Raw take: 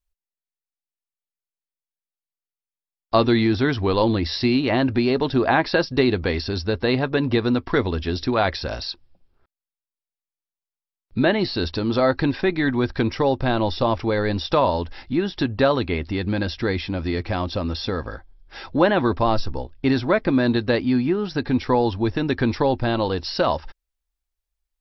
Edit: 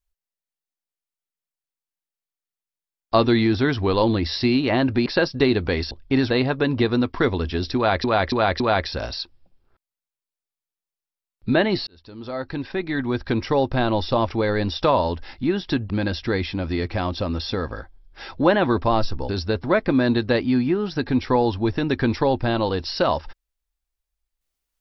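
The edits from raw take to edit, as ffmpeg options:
-filter_complex "[0:a]asplit=11[a][b][c][d][e][f][g][h][i][j][k];[a]atrim=end=5.062[l];[b]atrim=start=5.628:end=6.482[m];[c]atrim=start=19.638:end=20.032[n];[d]atrim=start=6.828:end=8.572[o];[e]atrim=start=8.288:end=8.572[p];[f]atrim=start=8.288:end=8.572[q];[g]atrim=start=8.288:end=11.56,asetpts=PTS-STARTPTS,afade=t=out:st=3.268:d=0.004:c=hsin[r];[h]atrim=start=11.56:end=15.592,asetpts=PTS-STARTPTS,afade=t=in:d=1.68[s];[i]atrim=start=16.248:end=19.642[t];[j]atrim=start=6.478:end=6.832[u];[k]atrim=start=20.028[v];[l][m]acrossfade=d=0.004:c1=hsin:c2=hsin[w];[w][n]acrossfade=d=0.004:c1=hsin:c2=hsin[x];[x][o]acrossfade=d=0.004:c1=hsin:c2=hsin[y];[y][p]acrossfade=d=0.004:c1=hsin:c2=hsin[z];[z][q]acrossfade=d=0.004:c1=hsin:c2=hsin[aa];[r][s]concat=n=2:v=0:a=1[ab];[aa][ab]acrossfade=d=0.004:c1=hsin:c2=hsin[ac];[ac][t]acrossfade=d=0.004:c1=hsin:c2=hsin[ad];[ad][u]acrossfade=d=0.004:c1=hsin:c2=hsin[ae];[ae][v]acrossfade=d=0.004:c1=hsin:c2=hsin"

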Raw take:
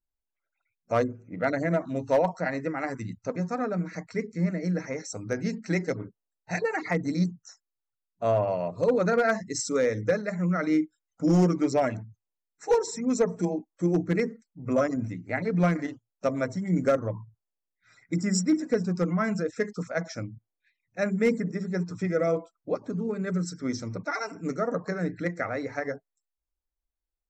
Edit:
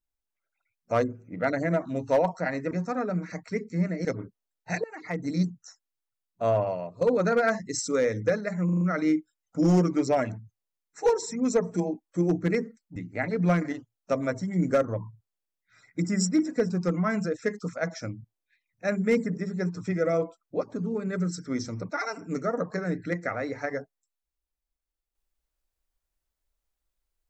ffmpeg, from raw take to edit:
-filter_complex "[0:a]asplit=10[a][b][c][d][e][f][g][h][i][j];[a]atrim=end=2.712[k];[b]atrim=start=3.338:end=4.682[l];[c]atrim=start=5.858:end=6.65,asetpts=PTS-STARTPTS,afade=t=out:st=0.788:d=0.004:c=hsin:silence=0.0749894[m];[d]atrim=start=6.65:end=8.82,asetpts=PTS-STARTPTS,afade=t=in:d=0.56:silence=0.0749894,afade=t=out:st=1.75:d=0.42:silence=0.251189[n];[e]atrim=start=8.82:end=10.502,asetpts=PTS-STARTPTS,afade=t=in:d=0.004:c=hsin:silence=0.251189[o];[f]atrim=start=10.458:end=10.502[p];[g]atrim=start=10.458:end=10.502[q];[h]atrim=start=10.458:end=10.502[r];[i]atrim=start=10.458:end=14.612[s];[j]atrim=start=15.098[t];[k][l]acrossfade=d=0.004:c1=hsin:c2=hsin[u];[m][n][o]concat=n=3:v=0:a=1[v];[u][v]acrossfade=d=0.004:c1=hsin:c2=hsin[w];[w][p]acrossfade=d=0.004:c1=hsin:c2=hsin[x];[x][q]acrossfade=d=0.004:c1=hsin:c2=hsin[y];[y][r]acrossfade=d=0.004:c1=hsin:c2=hsin[z];[z][s]acrossfade=d=0.004:c1=hsin:c2=hsin[aa];[aa][t]acrossfade=d=0.004:c1=hsin:c2=hsin"

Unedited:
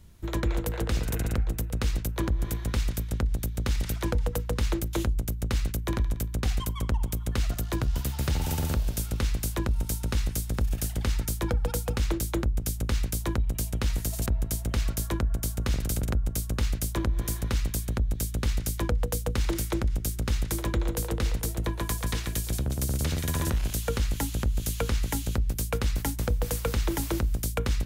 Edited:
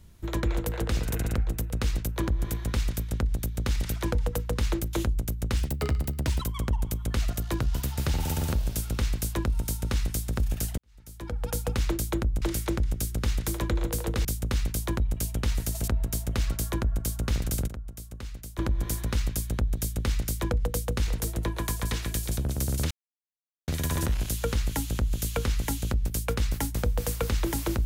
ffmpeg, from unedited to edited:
-filter_complex "[0:a]asplit=10[a][b][c][d][e][f][g][h][i][j];[a]atrim=end=5.574[k];[b]atrim=start=5.57:end=6.63,asetpts=PTS-STARTPTS,asetrate=55125,aresample=44100[l];[c]atrim=start=6.626:end=10.99,asetpts=PTS-STARTPTS,afade=t=out:st=4.36:d=0.004:c=hsin[m];[d]atrim=start=10.99:end=12.632,asetpts=PTS-STARTPTS,afade=t=in:d=0.8:c=qua[n];[e]atrim=start=19.458:end=21.292[o];[f]atrim=start=12.628:end=16.062[p];[g]atrim=start=16.058:end=16.972,asetpts=PTS-STARTPTS,volume=-11.5dB[q];[h]atrim=start=16.968:end=19.462[r];[i]atrim=start=21.288:end=23.12,asetpts=PTS-STARTPTS,afade=t=out:st=1.828:d=0.004:c=hsin,apad=pad_dur=0.77[s];[j]atrim=start=23.12,asetpts=PTS-STARTPTS,afade=t=in:d=0.004:c=hsin[t];[k][l]acrossfade=d=0.004:c1=hsin:c2=hsin[u];[m][n]concat=n=2:v=0:a=1[v];[u][v]acrossfade=d=0.004:c1=hsin:c2=hsin[w];[w][o]acrossfade=d=0.004:c1=hsin:c2=hsin[x];[x][p]acrossfade=d=0.004:c1=hsin:c2=hsin[y];[y][q]acrossfade=d=0.004:c1=hsin:c2=hsin[z];[z][r]acrossfade=d=0.004:c1=hsin:c2=hsin[aa];[s][t]concat=n=2:v=0:a=1[ab];[aa][ab]acrossfade=d=0.004:c1=hsin:c2=hsin"

